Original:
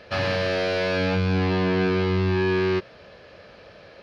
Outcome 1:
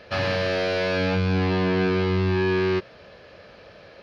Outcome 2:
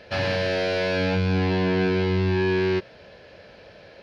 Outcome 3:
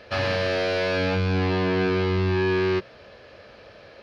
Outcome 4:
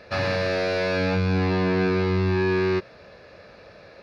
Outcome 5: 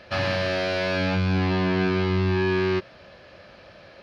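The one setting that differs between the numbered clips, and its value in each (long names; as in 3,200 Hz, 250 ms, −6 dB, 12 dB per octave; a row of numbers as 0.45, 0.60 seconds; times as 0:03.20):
notch filter, centre frequency: 7,900, 1,200, 170, 3,100, 450 Hertz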